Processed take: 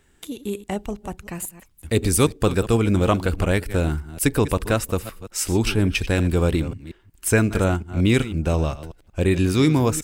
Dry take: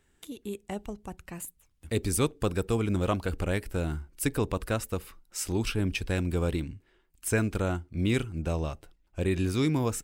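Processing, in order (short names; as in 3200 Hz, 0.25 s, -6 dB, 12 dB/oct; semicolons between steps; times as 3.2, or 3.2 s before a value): reverse delay 0.182 s, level -14 dB; gain +8.5 dB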